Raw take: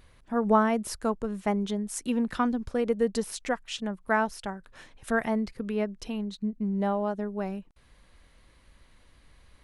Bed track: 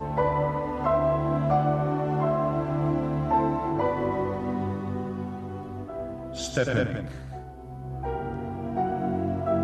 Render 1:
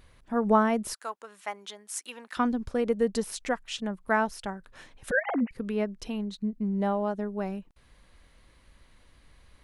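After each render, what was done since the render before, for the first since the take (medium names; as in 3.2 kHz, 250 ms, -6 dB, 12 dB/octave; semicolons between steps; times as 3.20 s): 0.93–2.37 s: high-pass 980 Hz; 5.11–5.51 s: formants replaced by sine waves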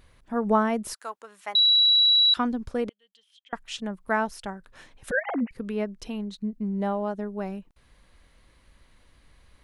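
1.55–2.34 s: bleep 3.91 kHz -15.5 dBFS; 2.89–3.53 s: band-pass filter 3.2 kHz, Q 19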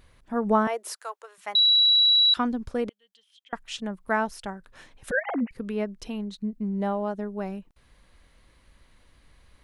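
0.67–1.38 s: steep high-pass 380 Hz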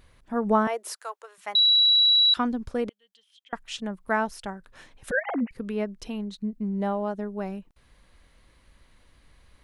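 no audible change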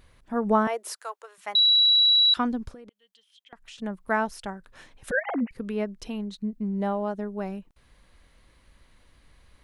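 2.69–3.78 s: compression 8:1, threshold -42 dBFS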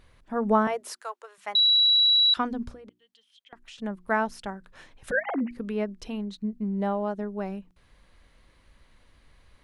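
treble shelf 8.6 kHz -7 dB; hum notches 60/120/180/240/300/360 Hz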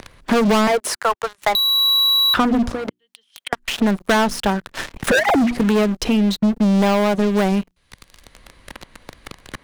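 waveshaping leveller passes 5; three bands compressed up and down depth 70%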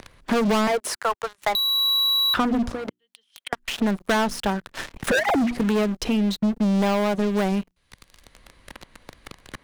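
trim -5 dB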